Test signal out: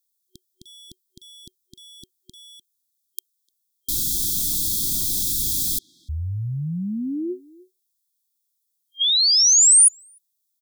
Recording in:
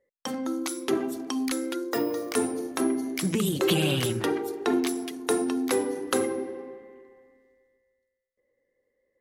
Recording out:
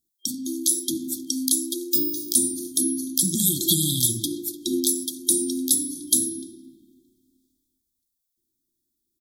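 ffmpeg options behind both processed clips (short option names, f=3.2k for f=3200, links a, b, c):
-filter_complex "[0:a]asplit=2[a][b];[b]adelay=300,highpass=300,lowpass=3.4k,asoftclip=type=hard:threshold=-20.5dB,volume=-19dB[c];[a][c]amix=inputs=2:normalize=0,afftfilt=real='re*(1-between(b*sr/4096,370,3200))':imag='im*(1-between(b*sr/4096,370,3200))':win_size=4096:overlap=0.75,crystalizer=i=4:c=0"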